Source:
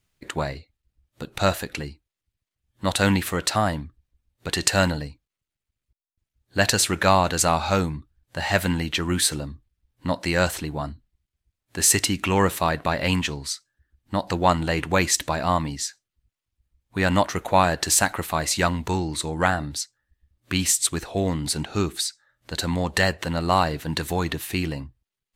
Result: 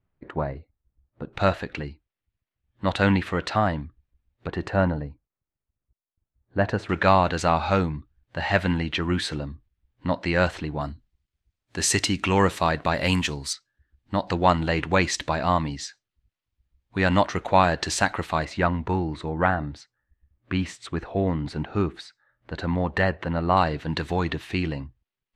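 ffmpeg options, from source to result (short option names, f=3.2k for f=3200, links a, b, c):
-af "asetnsamples=n=441:p=0,asendcmd='1.33 lowpass f 2800;4.47 lowpass f 1200;6.89 lowpass f 3200;10.81 lowpass f 6100;12.94 lowpass f 11000;13.53 lowpass f 4400;18.45 lowpass f 1900;23.57 lowpass f 3500',lowpass=1.2k"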